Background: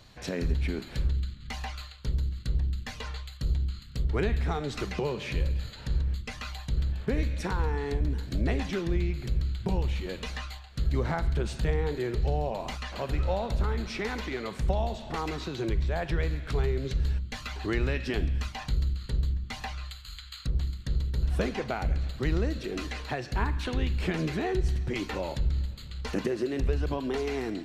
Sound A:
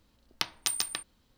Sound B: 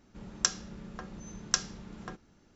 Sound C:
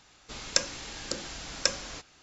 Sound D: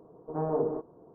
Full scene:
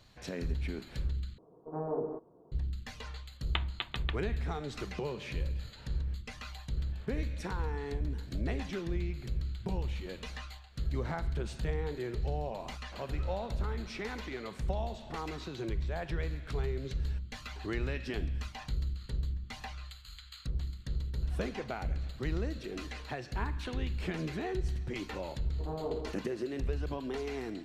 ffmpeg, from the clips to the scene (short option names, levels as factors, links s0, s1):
-filter_complex "[4:a]asplit=2[s0][s1];[0:a]volume=0.473[s2];[1:a]aresample=8000,aresample=44100[s3];[s2]asplit=2[s4][s5];[s4]atrim=end=1.384[s6];[s0]atrim=end=1.14,asetpts=PTS-STARTPTS,volume=0.501[s7];[s5]atrim=start=2.516[s8];[s3]atrim=end=1.37,asetpts=PTS-STARTPTS,volume=0.891,afade=t=in:d=0.004:c=hsin,afade=t=out:st=1.366:d=0.004:c=hsin,adelay=3140[s9];[s1]atrim=end=1.14,asetpts=PTS-STARTPTS,volume=0.398,afade=t=in:d=0.004:c=hsin,afade=t=out:st=1.136:d=0.004:c=hsin,adelay=25310[s10];[s6][s7]acrossfade=d=0.004:c1=hsin:c2=hsin[s11];[s11][s8]acrossfade=d=0.004:c1=hsin:c2=hsin[s12];[s12][s9][s10]amix=inputs=3:normalize=0"